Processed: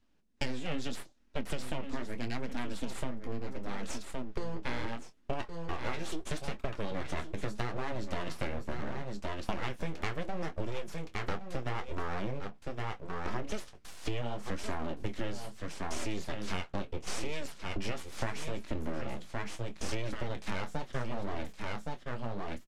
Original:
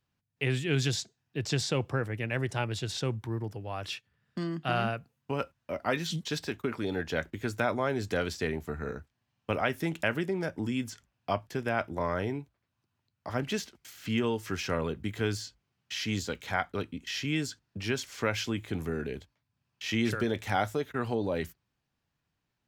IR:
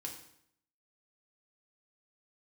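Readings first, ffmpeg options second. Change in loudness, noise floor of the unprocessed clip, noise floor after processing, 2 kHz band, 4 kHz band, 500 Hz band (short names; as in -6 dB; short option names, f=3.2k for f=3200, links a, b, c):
-7.0 dB, -82 dBFS, -54 dBFS, -7.0 dB, -7.5 dB, -7.0 dB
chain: -filter_complex "[0:a]lowshelf=f=260:g=8,aeval=exprs='abs(val(0))':c=same,lowpass=9.1k,asplit=2[a][b];[b]adelay=25,volume=-13dB[c];[a][c]amix=inputs=2:normalize=0,asplit=2[d][e];[e]aecho=0:1:1117:0.266[f];[d][f]amix=inputs=2:normalize=0,flanger=delay=3:depth=8.7:regen=-43:speed=0.75:shape=sinusoidal,acompressor=threshold=-37dB:ratio=10,volume=8.5dB"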